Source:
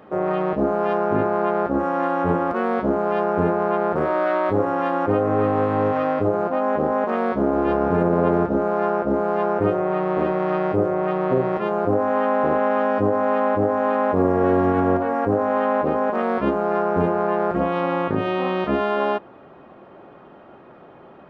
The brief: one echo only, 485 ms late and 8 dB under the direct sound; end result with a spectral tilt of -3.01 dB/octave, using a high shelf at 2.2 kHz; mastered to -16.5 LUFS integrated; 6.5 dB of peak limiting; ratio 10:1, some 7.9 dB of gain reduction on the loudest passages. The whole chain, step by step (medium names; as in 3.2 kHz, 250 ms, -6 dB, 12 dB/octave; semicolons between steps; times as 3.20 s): treble shelf 2.2 kHz +6 dB; compression 10:1, threshold -22 dBFS; peak limiter -20 dBFS; delay 485 ms -8 dB; trim +12.5 dB